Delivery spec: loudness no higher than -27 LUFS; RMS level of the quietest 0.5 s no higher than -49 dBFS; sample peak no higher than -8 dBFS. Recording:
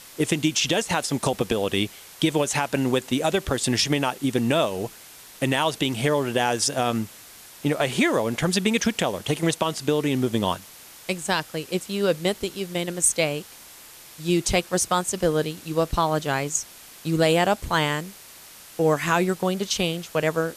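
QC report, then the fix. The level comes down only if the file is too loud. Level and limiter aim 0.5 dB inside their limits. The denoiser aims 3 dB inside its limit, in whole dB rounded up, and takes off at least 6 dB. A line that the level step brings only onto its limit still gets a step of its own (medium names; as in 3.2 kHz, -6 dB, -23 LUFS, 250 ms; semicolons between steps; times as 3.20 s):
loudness -24.0 LUFS: fail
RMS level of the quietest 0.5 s -46 dBFS: fail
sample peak -8.5 dBFS: pass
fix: trim -3.5 dB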